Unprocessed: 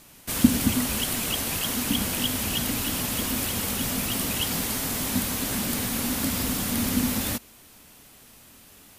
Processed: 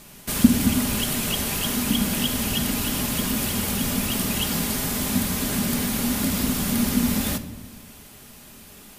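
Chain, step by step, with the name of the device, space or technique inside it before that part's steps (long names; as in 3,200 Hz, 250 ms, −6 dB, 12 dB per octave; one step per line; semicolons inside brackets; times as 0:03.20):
low-shelf EQ 340 Hz +3 dB
rectangular room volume 3,400 cubic metres, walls furnished, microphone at 1.3 metres
parallel compression (in parallel at −2 dB: downward compressor, threshold −34 dBFS, peak gain reduction 24.5 dB)
on the sum: level −1 dB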